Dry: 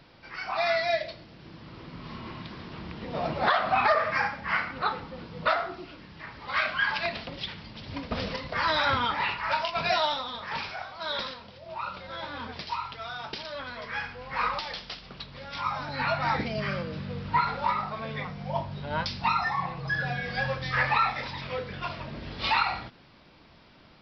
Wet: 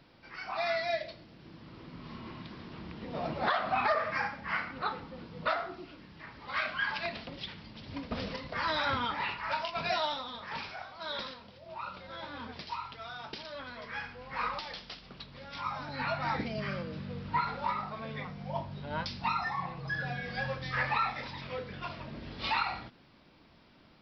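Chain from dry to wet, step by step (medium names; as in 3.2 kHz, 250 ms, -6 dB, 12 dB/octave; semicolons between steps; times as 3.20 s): peaking EQ 260 Hz +3.5 dB 1.1 oct; trim -6 dB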